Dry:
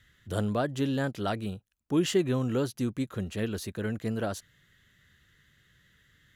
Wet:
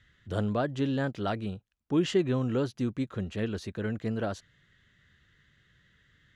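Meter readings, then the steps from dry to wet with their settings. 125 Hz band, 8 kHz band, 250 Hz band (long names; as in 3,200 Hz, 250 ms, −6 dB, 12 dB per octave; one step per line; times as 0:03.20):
0.0 dB, −8.0 dB, 0.0 dB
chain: high-frequency loss of the air 93 metres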